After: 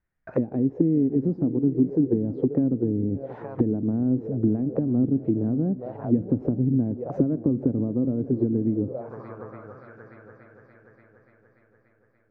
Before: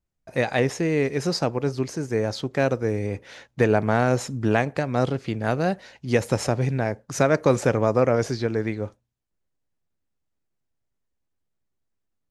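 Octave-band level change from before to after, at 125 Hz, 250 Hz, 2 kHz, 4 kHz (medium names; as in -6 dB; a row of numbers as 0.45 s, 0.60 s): -1.0 dB, +5.0 dB, under -20 dB, under -35 dB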